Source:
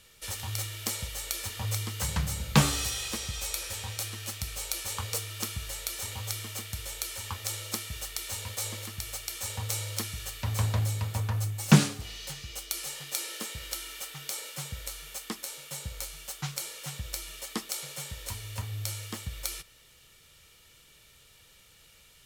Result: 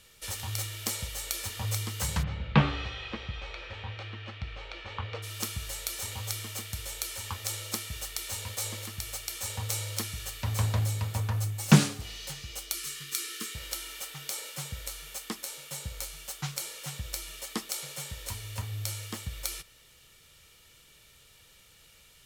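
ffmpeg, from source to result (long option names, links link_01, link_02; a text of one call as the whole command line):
ffmpeg -i in.wav -filter_complex "[0:a]asplit=3[link_01][link_02][link_03];[link_01]afade=type=out:start_time=2.22:duration=0.02[link_04];[link_02]lowpass=frequency=3100:width=0.5412,lowpass=frequency=3100:width=1.3066,afade=type=in:start_time=2.22:duration=0.02,afade=type=out:start_time=5.22:duration=0.02[link_05];[link_03]afade=type=in:start_time=5.22:duration=0.02[link_06];[link_04][link_05][link_06]amix=inputs=3:normalize=0,asettb=1/sr,asplit=3[link_07][link_08][link_09];[link_07]atrim=end=12.744[link_10];[link_08]atrim=start=12.74:end=13.55,asetpts=PTS-STARTPTS,afade=type=in:duration=0.004:curve=qsin,afade=type=out:start_time=0.806:duration=0.004:curve=qsin,asuperstop=centerf=690:order=8:qfactor=1.1[link_11];[link_09]atrim=start=13.546[link_12];[link_10][link_11]acrossfade=duration=0.004:curve1=hsin:curve2=qsin[link_13];[link_13][link_12]acrossfade=duration=0.004:curve1=qsin:curve2=hsin" out.wav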